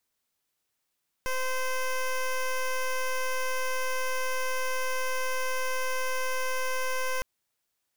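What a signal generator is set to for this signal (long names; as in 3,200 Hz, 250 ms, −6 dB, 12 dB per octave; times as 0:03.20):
pulse wave 516 Hz, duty 13% −28.5 dBFS 5.96 s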